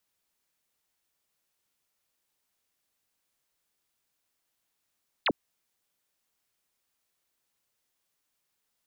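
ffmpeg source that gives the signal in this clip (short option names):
-f lavfi -i "aevalsrc='0.0794*clip(t/0.002,0,1)*clip((0.05-t)/0.002,0,1)*sin(2*PI*4800*0.05/log(180/4800)*(exp(log(180/4800)*t/0.05)-1))':d=0.05:s=44100"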